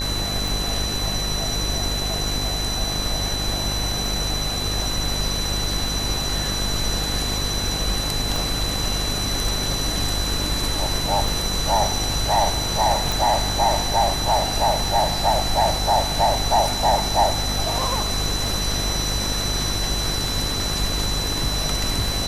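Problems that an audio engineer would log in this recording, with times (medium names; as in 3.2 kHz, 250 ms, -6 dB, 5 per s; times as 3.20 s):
buzz 50 Hz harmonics 22 -28 dBFS
tick 33 1/3 rpm
whine 4 kHz -26 dBFS
8.36 s: pop
13.12 s: pop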